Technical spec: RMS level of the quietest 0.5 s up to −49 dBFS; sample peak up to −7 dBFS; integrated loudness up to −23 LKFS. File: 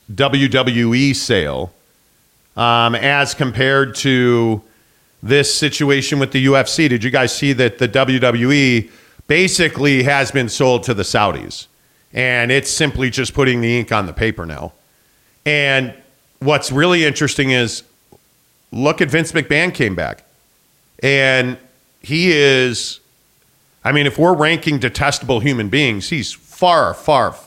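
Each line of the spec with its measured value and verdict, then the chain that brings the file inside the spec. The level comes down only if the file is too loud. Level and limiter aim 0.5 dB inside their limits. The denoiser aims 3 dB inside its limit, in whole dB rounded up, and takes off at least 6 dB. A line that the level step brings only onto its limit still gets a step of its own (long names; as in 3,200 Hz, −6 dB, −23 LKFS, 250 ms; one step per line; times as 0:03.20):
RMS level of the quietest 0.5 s −56 dBFS: in spec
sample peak −1.5 dBFS: out of spec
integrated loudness −15.0 LKFS: out of spec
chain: level −8.5 dB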